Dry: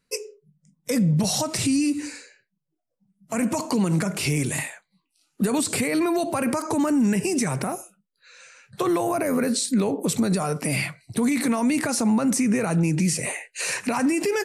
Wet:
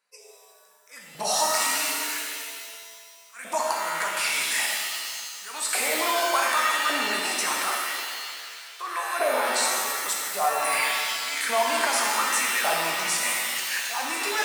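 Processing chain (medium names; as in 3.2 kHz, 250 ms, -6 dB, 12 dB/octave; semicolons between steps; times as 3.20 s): slow attack 261 ms; LFO high-pass saw up 0.87 Hz 720–1500 Hz; pitch-shifted reverb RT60 1.9 s, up +7 st, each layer -2 dB, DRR -1.5 dB; trim -2.5 dB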